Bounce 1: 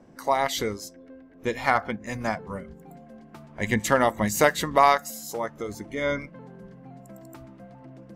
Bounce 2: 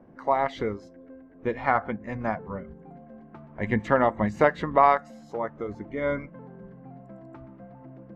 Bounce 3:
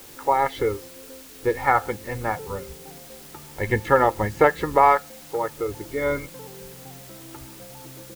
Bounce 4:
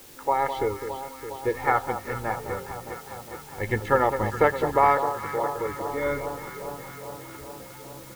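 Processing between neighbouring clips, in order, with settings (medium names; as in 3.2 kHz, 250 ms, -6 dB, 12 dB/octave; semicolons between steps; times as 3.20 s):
low-pass 1.7 kHz 12 dB/octave
comb 2.3 ms, depth 68%; in parallel at -9.5 dB: word length cut 6-bit, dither triangular
echo whose repeats swap between lows and highs 205 ms, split 1.2 kHz, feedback 83%, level -8.5 dB; trim -3.5 dB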